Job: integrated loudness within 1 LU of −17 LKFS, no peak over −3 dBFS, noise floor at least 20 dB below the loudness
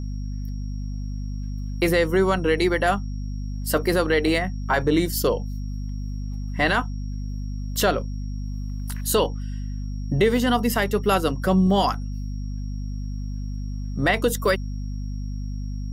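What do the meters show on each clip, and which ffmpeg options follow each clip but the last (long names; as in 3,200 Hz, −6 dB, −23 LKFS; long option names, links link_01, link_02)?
mains hum 50 Hz; hum harmonics up to 250 Hz; level of the hum −27 dBFS; interfering tone 5,600 Hz; level of the tone −53 dBFS; integrated loudness −24.5 LKFS; sample peak −8.5 dBFS; target loudness −17.0 LKFS
→ -af "bandreject=frequency=50:width_type=h:width=6,bandreject=frequency=100:width_type=h:width=6,bandreject=frequency=150:width_type=h:width=6,bandreject=frequency=200:width_type=h:width=6,bandreject=frequency=250:width_type=h:width=6"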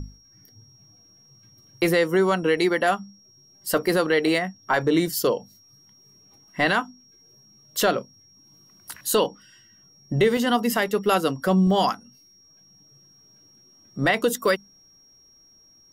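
mains hum none found; interfering tone 5,600 Hz; level of the tone −53 dBFS
→ -af "bandreject=frequency=5600:width=30"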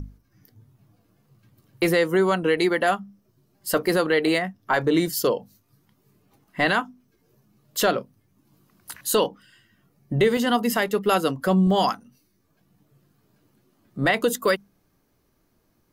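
interfering tone none found; integrated loudness −22.5 LKFS; sample peak −9.5 dBFS; target loudness −17.0 LKFS
→ -af "volume=5.5dB"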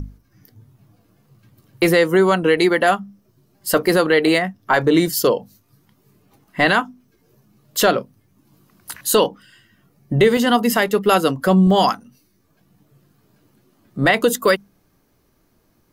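integrated loudness −17.0 LKFS; sample peak −4.0 dBFS; background noise floor −62 dBFS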